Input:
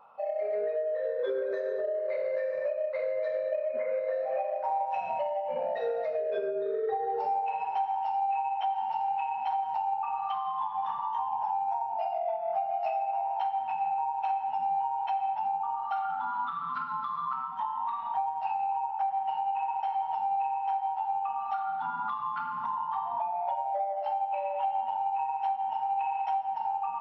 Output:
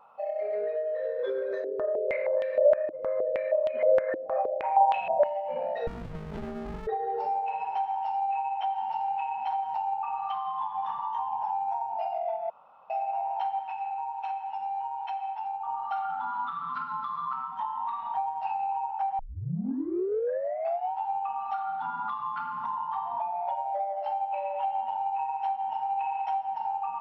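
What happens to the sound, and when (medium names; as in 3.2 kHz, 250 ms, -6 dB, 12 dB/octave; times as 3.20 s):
1.64–5.24 s: step-sequenced low-pass 6.4 Hz 320–3200 Hz
5.87–6.87 s: sliding maximum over 65 samples
12.50–12.90 s: room tone
13.59–15.67 s: high-pass 930 Hz 6 dB/octave
19.19 s: tape start 1.76 s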